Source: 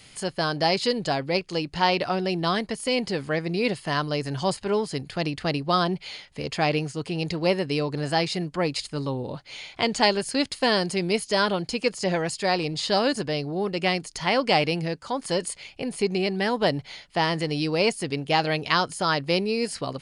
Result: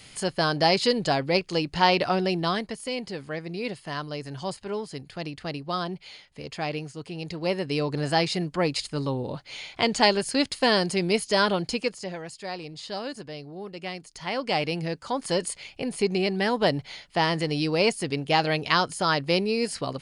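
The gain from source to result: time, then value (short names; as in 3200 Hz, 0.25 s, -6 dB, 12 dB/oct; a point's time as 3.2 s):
2.22 s +1.5 dB
2.97 s -7 dB
7.23 s -7 dB
7.91 s +0.5 dB
11.73 s +0.5 dB
12.13 s -11 dB
13.93 s -11 dB
15.04 s 0 dB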